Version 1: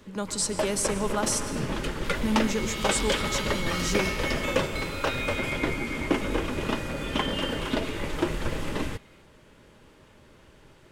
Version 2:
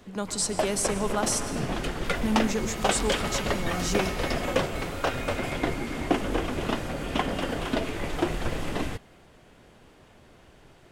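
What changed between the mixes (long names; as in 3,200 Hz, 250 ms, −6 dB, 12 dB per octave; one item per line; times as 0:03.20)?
second sound: add parametric band 3,300 Hz −14 dB 1.3 octaves
master: remove Butterworth band-reject 720 Hz, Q 6.2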